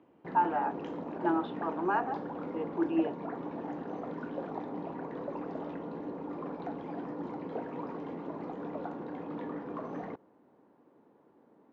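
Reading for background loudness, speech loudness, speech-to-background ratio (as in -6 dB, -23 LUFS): -40.0 LUFS, -33.0 LUFS, 7.0 dB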